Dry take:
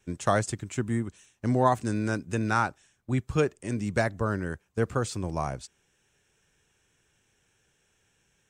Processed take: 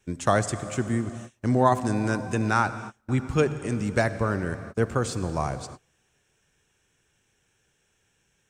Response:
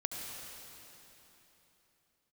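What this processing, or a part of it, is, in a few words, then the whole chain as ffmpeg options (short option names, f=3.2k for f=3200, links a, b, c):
keyed gated reverb: -filter_complex "[0:a]asplit=3[a][b][c];[1:a]atrim=start_sample=2205[d];[b][d]afir=irnorm=-1:irlink=0[e];[c]apad=whole_len=374513[f];[e][f]sidechaingate=range=-33dB:threshold=-53dB:ratio=16:detection=peak,volume=-8.5dB[g];[a][g]amix=inputs=2:normalize=0"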